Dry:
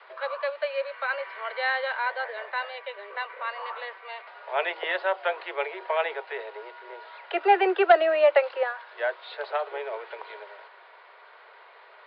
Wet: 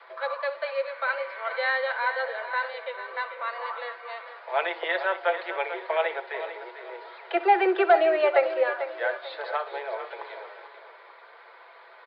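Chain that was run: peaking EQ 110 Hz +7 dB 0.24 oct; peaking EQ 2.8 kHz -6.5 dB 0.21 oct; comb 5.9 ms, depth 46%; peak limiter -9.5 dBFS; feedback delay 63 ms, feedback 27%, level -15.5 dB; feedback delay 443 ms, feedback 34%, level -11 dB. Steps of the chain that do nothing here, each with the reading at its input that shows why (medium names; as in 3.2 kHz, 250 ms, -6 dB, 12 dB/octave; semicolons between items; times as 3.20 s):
peaking EQ 110 Hz: input has nothing below 300 Hz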